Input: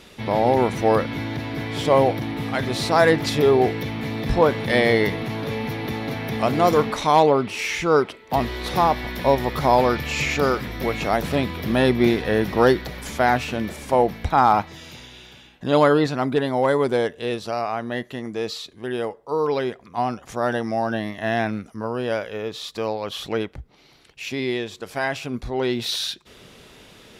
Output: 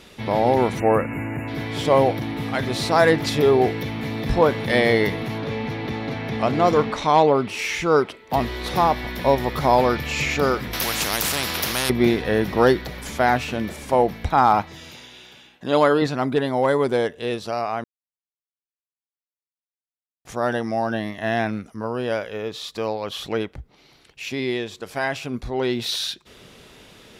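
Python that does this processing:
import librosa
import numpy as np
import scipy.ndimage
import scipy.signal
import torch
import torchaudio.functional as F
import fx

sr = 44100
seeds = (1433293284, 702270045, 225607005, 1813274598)

y = fx.spec_erase(x, sr, start_s=0.79, length_s=0.69, low_hz=2900.0, high_hz=6700.0)
y = fx.air_absorb(y, sr, metres=60.0, at=(5.38, 7.35))
y = fx.spectral_comp(y, sr, ratio=4.0, at=(10.73, 11.9))
y = fx.highpass(y, sr, hz=230.0, slope=6, at=(14.91, 16.02))
y = fx.edit(y, sr, fx.silence(start_s=17.84, length_s=2.41), tone=tone)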